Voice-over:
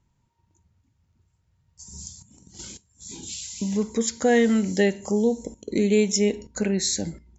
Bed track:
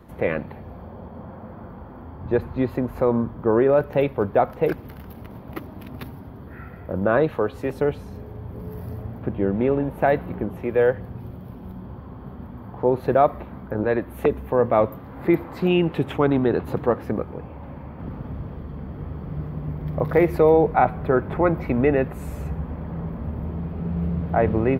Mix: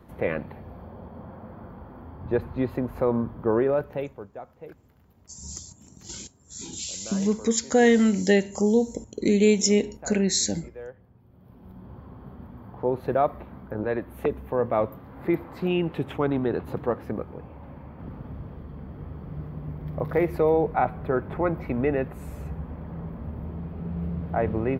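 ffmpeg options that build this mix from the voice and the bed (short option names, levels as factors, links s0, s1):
-filter_complex "[0:a]adelay=3500,volume=1.12[s0];[1:a]volume=4.22,afade=t=out:st=3.51:d=0.77:silence=0.125893,afade=t=in:st=11.27:d=0.72:silence=0.158489[s1];[s0][s1]amix=inputs=2:normalize=0"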